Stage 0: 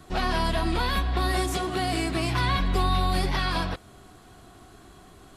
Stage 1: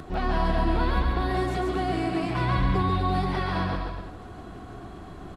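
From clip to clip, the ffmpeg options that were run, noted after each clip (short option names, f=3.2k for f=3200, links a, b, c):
-filter_complex "[0:a]lowpass=f=1.2k:p=1,acompressor=mode=upward:threshold=-33dB:ratio=2.5,asplit=2[a][b];[b]aecho=0:1:140|252|341.6|413.3|470.6:0.631|0.398|0.251|0.158|0.1[c];[a][c]amix=inputs=2:normalize=0"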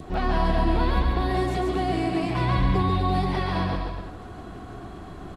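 -af "adynamicequalizer=threshold=0.00447:dfrequency=1400:dqfactor=3.2:tfrequency=1400:tqfactor=3.2:attack=5:release=100:ratio=0.375:range=3:mode=cutabove:tftype=bell,volume=2dB"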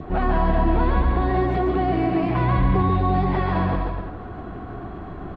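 -filter_complex "[0:a]lowpass=2k,asplit=2[a][b];[b]alimiter=limit=-19.5dB:level=0:latency=1,volume=-2dB[c];[a][c]amix=inputs=2:normalize=0"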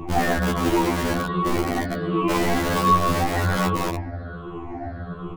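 -filter_complex "[0:a]afftfilt=real='re*pow(10,18/40*sin(2*PI*(0.69*log(max(b,1)*sr/1024/100)/log(2)-(-1.3)*(pts-256)/sr)))':imag='im*pow(10,18/40*sin(2*PI*(0.69*log(max(b,1)*sr/1024/100)/log(2)-(-1.3)*(pts-256)/sr)))':win_size=1024:overlap=0.75,acrossover=split=240|690|1600[a][b][c][d];[a]aeval=exprs='(mod(6.68*val(0)+1,2)-1)/6.68':c=same[e];[e][b][c][d]amix=inputs=4:normalize=0,afftfilt=real='re*2*eq(mod(b,4),0)':imag='im*2*eq(mod(b,4),0)':win_size=2048:overlap=0.75"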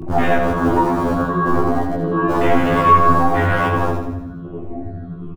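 -filter_complex "[0:a]afwtdn=0.0501,asplit=2[a][b];[b]adelay=19,volume=-3dB[c];[a][c]amix=inputs=2:normalize=0,asplit=2[d][e];[e]aecho=0:1:83|166|249|332|415|498|581:0.447|0.246|0.135|0.0743|0.0409|0.0225|0.0124[f];[d][f]amix=inputs=2:normalize=0,volume=4dB"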